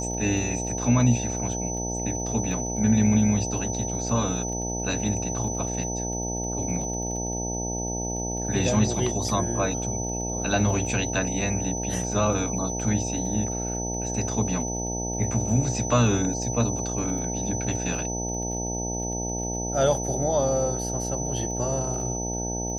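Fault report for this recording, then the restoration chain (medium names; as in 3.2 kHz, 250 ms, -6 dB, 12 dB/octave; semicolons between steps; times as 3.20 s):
buzz 60 Hz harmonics 15 -31 dBFS
crackle 24 per s -36 dBFS
whine 6 kHz -31 dBFS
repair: de-click; band-stop 6 kHz, Q 30; de-hum 60 Hz, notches 15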